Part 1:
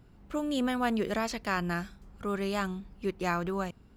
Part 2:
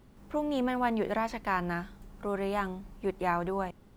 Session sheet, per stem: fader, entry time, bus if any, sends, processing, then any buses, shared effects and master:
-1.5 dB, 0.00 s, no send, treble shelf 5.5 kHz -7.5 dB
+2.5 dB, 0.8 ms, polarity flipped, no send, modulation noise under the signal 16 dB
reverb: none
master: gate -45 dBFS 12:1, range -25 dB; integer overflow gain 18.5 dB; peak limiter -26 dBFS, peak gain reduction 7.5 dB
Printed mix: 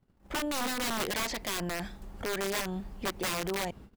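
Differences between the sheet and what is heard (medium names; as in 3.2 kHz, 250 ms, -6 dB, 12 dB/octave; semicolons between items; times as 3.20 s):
stem 1 -1.5 dB -> +6.5 dB; stem 2: missing modulation noise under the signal 16 dB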